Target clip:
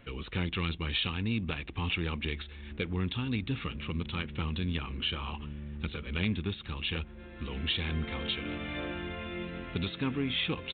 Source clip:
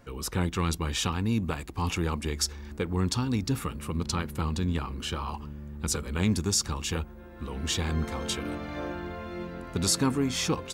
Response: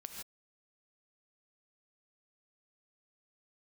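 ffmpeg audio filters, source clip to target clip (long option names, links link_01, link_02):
-af "firequalizer=gain_entry='entry(180,0);entry(930,-5);entry(2400,9)':delay=0.05:min_phase=1,acompressor=threshold=-35dB:ratio=1.5" -ar 8000 -c:a adpcm_g726 -b:a 40k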